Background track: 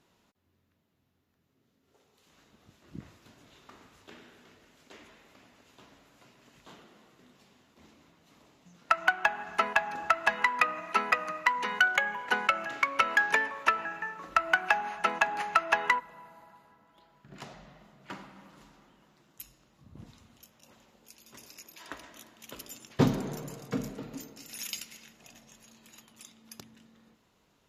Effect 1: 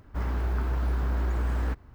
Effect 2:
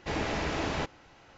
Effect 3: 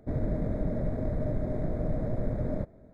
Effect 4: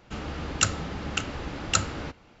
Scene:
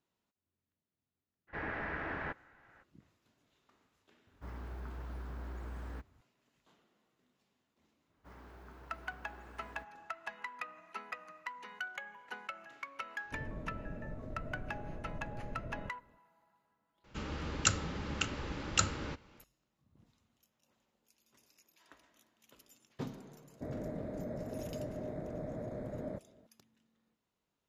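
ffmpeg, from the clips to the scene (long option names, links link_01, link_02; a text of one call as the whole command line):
ffmpeg -i bed.wav -i cue0.wav -i cue1.wav -i cue2.wav -i cue3.wav -filter_complex "[1:a]asplit=2[link_01][link_02];[3:a]asplit=2[link_03][link_04];[0:a]volume=-17.5dB[link_05];[2:a]lowpass=frequency=1700:width_type=q:width=4[link_06];[link_01]highpass=65[link_07];[link_02]highpass=frequency=240:poles=1[link_08];[4:a]bandreject=frequency=710:width=6[link_09];[link_04]highpass=frequency=260:poles=1[link_10];[link_06]atrim=end=1.37,asetpts=PTS-STARTPTS,volume=-11dB,afade=type=in:duration=0.02,afade=type=out:start_time=1.35:duration=0.02,adelay=1470[link_11];[link_07]atrim=end=1.94,asetpts=PTS-STARTPTS,volume=-13.5dB,afade=type=in:duration=0.004:curve=hsin,afade=type=out:start_time=1.936:duration=0.004:curve=hsin,adelay=4270[link_12];[link_08]atrim=end=1.94,asetpts=PTS-STARTPTS,volume=-17.5dB,afade=type=in:duration=0.004:curve=hsin,afade=type=out:start_time=1.936:duration=0.004:curve=hsin,adelay=357210S[link_13];[link_03]atrim=end=2.93,asetpts=PTS-STARTPTS,volume=-14dB,afade=type=in:duration=0.004:curve=hsin,afade=type=out:start_time=2.926:duration=0.004:curve=hsin,adelay=13250[link_14];[link_09]atrim=end=2.4,asetpts=PTS-STARTPTS,volume=-5.5dB,afade=type=in:duration=0.004:curve=hsin,afade=type=out:start_time=2.396:duration=0.004:curve=hsin,adelay=17040[link_15];[link_10]atrim=end=2.93,asetpts=PTS-STARTPTS,volume=-5.5dB,afade=type=in:duration=0.004:curve=hsin,afade=type=out:start_time=2.926:duration=0.004:curve=hsin,adelay=23540[link_16];[link_05][link_11][link_12][link_13][link_14][link_15][link_16]amix=inputs=7:normalize=0" out.wav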